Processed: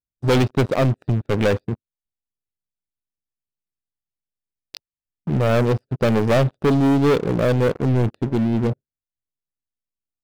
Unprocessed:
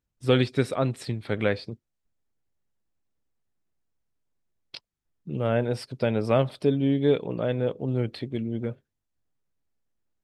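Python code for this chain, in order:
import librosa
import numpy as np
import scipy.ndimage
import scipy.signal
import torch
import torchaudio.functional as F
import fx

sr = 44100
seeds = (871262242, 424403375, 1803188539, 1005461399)

y = fx.wiener(x, sr, points=41)
y = fx.leveller(y, sr, passes=5)
y = y * 10.0 ** (-4.5 / 20.0)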